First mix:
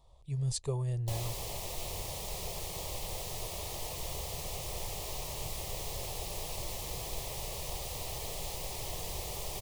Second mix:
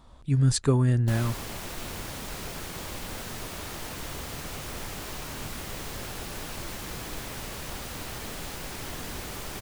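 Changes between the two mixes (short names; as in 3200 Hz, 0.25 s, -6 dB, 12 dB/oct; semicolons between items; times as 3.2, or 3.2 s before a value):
speech +7.5 dB; master: remove fixed phaser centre 620 Hz, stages 4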